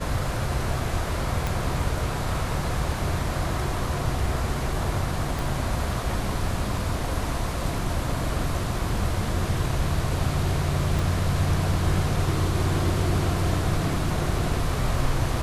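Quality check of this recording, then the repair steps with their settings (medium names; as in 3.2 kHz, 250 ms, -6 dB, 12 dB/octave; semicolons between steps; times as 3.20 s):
1.47 s: pop
5.39 s: pop
10.99 s: pop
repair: de-click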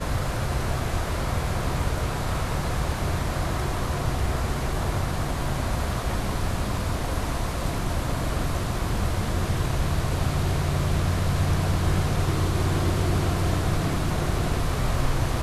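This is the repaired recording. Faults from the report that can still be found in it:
1.47 s: pop
5.39 s: pop
10.99 s: pop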